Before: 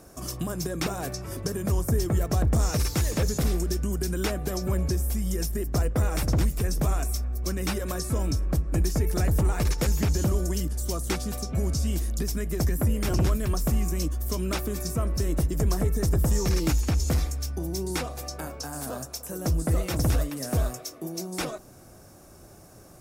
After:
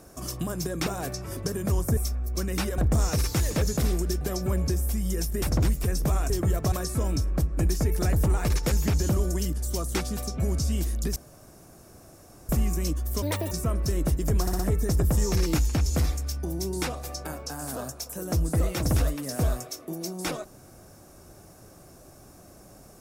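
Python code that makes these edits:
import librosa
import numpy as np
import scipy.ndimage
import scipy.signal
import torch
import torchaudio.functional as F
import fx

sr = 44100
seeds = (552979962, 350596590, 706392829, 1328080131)

y = fx.edit(x, sr, fx.swap(start_s=1.97, length_s=0.42, other_s=7.06, other_length_s=0.81),
    fx.cut(start_s=3.82, length_s=0.6),
    fx.cut(start_s=5.63, length_s=0.55),
    fx.room_tone_fill(start_s=12.31, length_s=1.33),
    fx.speed_span(start_s=14.37, length_s=0.46, speed=1.57),
    fx.stutter(start_s=15.73, slice_s=0.06, count=4), tone=tone)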